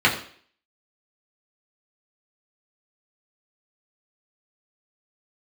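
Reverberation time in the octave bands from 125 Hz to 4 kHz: 0.45, 0.50, 0.55, 0.50, 0.55, 0.55 s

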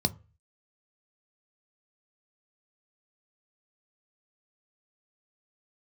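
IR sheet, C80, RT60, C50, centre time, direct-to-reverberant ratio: 28.0 dB, 0.35 s, 22.5 dB, 4 ms, 10.0 dB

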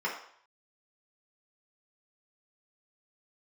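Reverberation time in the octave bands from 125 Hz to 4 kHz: 0.40, 0.45, 0.60, 0.65, 0.60, 0.60 s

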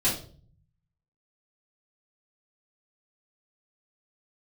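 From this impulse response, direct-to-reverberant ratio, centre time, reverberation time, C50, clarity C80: -8.5 dB, 30 ms, 0.45 s, 6.5 dB, 12.0 dB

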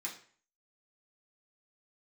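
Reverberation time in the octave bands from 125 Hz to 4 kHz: 0.50, 0.45, 0.45, 0.45, 0.50, 0.40 s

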